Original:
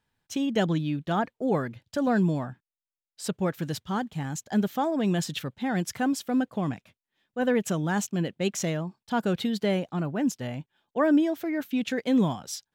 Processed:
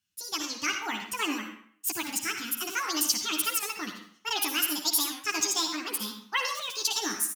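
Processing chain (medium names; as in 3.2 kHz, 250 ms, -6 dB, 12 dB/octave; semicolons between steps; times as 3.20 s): high-pass 42 Hz; amplifier tone stack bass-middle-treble 10-0-10; doubling 17 ms -3 dB; plate-style reverb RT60 1 s, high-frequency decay 0.7×, pre-delay 85 ms, DRR 5 dB; speed mistake 45 rpm record played at 78 rpm; level rider gain up to 7 dB; dynamic bell 5.8 kHz, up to +5 dB, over -43 dBFS, Q 1.1; warped record 78 rpm, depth 100 cents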